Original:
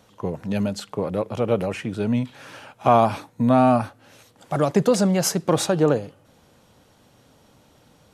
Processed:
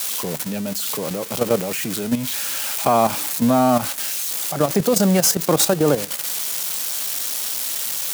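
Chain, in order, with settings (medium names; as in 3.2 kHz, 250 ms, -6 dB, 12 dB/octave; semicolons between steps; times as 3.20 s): zero-crossing glitches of -16 dBFS; high-pass 130 Hz 24 dB/octave; level held to a coarse grid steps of 10 dB; trim +5 dB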